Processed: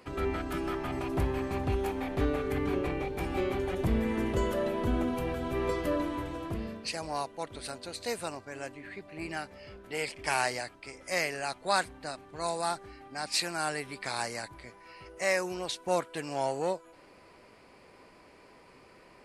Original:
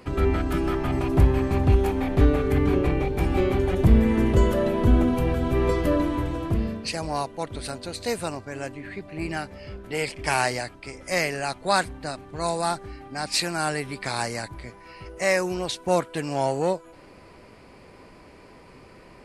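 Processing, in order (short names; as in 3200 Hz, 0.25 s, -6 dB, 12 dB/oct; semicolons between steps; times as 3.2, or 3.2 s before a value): low shelf 240 Hz -9.5 dB; gain -5 dB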